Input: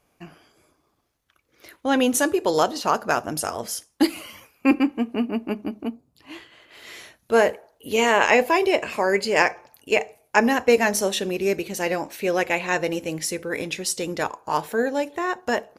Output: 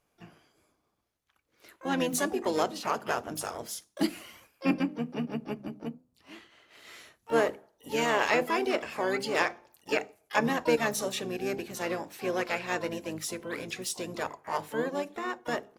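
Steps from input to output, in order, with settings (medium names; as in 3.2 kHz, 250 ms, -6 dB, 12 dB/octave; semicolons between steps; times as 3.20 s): hum notches 50/100/150/200/250/300/350/400 Hz; harmony voices -7 st -8 dB, +4 st -16 dB, +12 st -14 dB; trim -9 dB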